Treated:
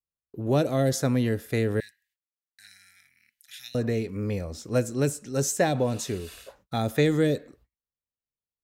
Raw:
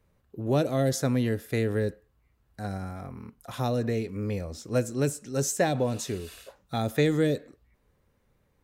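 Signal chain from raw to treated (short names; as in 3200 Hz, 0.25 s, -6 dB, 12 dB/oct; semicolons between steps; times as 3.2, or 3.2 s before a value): gate -58 dBFS, range -37 dB; 1.8–3.75 elliptic high-pass 1800 Hz, stop band 40 dB; gain +1.5 dB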